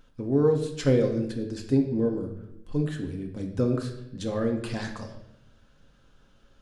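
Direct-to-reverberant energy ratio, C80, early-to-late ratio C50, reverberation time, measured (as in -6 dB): 1.5 dB, 10.5 dB, 8.0 dB, 0.80 s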